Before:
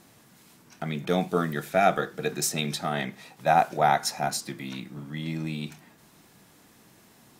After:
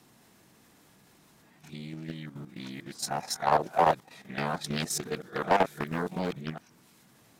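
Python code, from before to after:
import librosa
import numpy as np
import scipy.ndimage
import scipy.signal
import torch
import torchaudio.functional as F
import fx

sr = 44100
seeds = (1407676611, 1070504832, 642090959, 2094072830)

y = np.flip(x).copy()
y = fx.dynamic_eq(y, sr, hz=2600.0, q=5.9, threshold_db=-51.0, ratio=4.0, max_db=-5)
y = fx.level_steps(y, sr, step_db=10)
y = fx.doppler_dist(y, sr, depth_ms=0.54)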